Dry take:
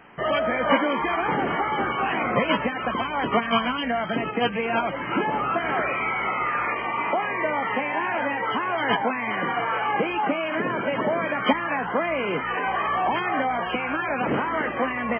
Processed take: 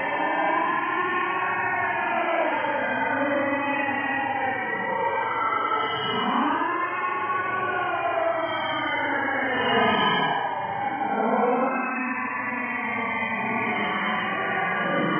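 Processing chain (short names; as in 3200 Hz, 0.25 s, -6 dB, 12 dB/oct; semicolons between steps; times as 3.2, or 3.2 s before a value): vocal rider 0.5 s; Paulstretch 10×, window 0.05 s, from 7.93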